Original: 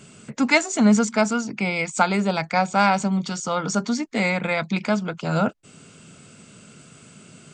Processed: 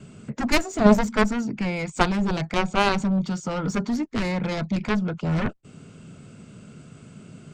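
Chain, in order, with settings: gate with hold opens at -45 dBFS; added harmonics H 2 -23 dB, 3 -17 dB, 7 -14 dB, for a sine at -3.5 dBFS; tilt -2.5 dB/oct

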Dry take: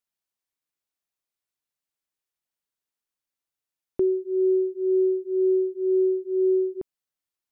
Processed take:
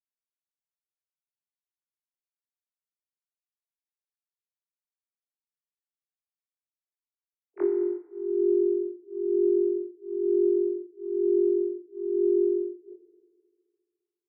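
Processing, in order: sine-wave speech; dynamic EQ 310 Hz, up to +5 dB, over -37 dBFS, Q 6.4; granular stretch 1.9×, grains 95 ms; FDN reverb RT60 2 s, low-frequency decay 1×, high-frequency decay 0.65×, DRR 4.5 dB; upward expander 1.5:1, over -40 dBFS

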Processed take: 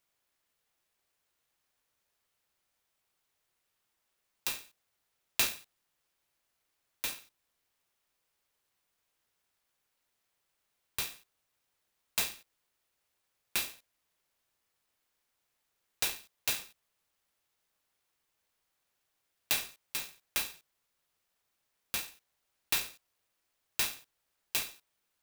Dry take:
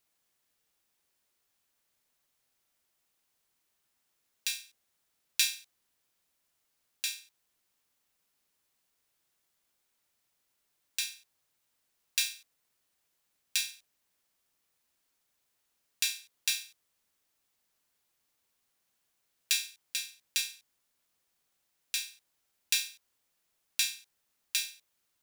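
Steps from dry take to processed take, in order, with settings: bell 230 Hz -12.5 dB 0.71 oct; clock jitter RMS 0.044 ms; gain -1 dB

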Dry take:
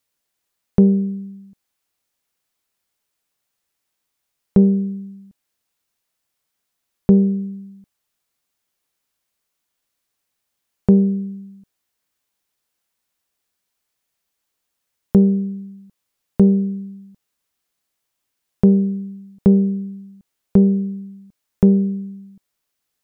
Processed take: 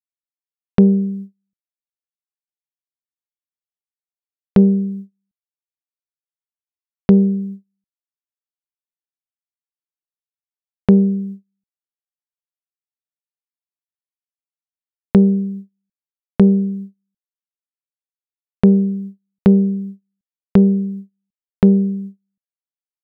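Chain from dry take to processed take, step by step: gate -31 dBFS, range -37 dB; gain +1.5 dB

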